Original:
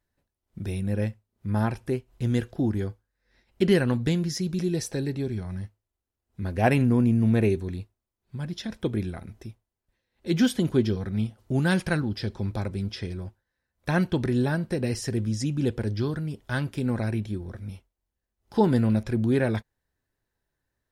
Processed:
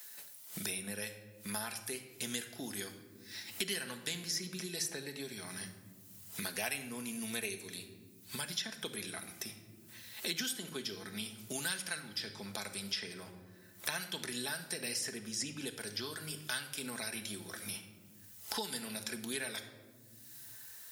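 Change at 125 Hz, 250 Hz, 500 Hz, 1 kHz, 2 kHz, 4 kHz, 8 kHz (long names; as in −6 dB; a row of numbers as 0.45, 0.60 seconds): −25.0, −20.0, −17.0, −13.0, −6.0, +1.0, +4.0 decibels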